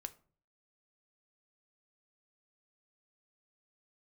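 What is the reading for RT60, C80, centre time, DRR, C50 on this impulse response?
0.45 s, 23.5 dB, 4 ms, 9.5 dB, 18.5 dB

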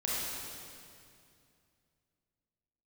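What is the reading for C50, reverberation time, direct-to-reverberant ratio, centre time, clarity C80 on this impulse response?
-4.0 dB, 2.4 s, -7.0 dB, 0.16 s, -1.5 dB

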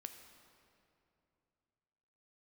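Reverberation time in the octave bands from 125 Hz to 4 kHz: 3.4, 3.1, 2.9, 2.6, 2.3, 1.8 s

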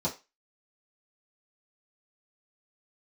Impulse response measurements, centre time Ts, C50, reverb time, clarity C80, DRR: 16 ms, 13.5 dB, 0.25 s, 20.5 dB, -8.5 dB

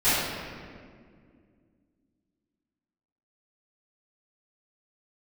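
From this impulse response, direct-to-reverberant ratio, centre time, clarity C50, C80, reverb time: -19.0 dB, 0.126 s, -3.5 dB, 0.0 dB, 2.1 s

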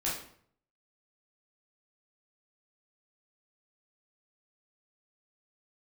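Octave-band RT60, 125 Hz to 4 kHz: 0.85, 0.65, 0.60, 0.55, 0.50, 0.45 s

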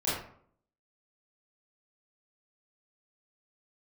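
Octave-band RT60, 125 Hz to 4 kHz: 0.70, 0.65, 0.60, 0.55, 0.45, 0.30 s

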